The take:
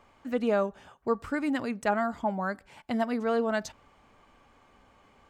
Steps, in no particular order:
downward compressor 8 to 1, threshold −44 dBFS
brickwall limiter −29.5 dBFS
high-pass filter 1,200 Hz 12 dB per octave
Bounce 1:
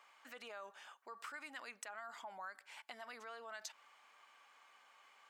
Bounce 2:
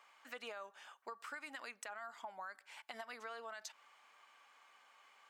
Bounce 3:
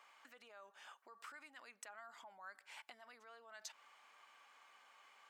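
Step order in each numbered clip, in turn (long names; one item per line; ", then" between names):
brickwall limiter, then high-pass filter, then downward compressor
high-pass filter, then brickwall limiter, then downward compressor
brickwall limiter, then downward compressor, then high-pass filter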